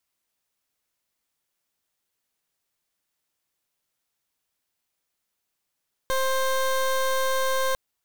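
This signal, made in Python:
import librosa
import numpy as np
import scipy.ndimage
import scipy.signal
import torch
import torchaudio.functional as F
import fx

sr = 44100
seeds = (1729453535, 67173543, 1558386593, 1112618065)

y = fx.pulse(sr, length_s=1.65, hz=527.0, level_db=-23.5, duty_pct=21)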